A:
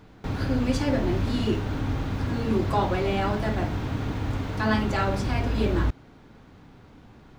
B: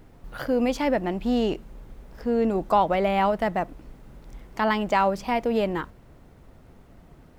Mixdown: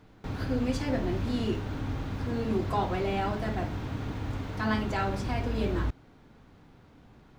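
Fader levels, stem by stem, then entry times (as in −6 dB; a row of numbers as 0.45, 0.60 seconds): −5.5, −15.5 decibels; 0.00, 0.00 seconds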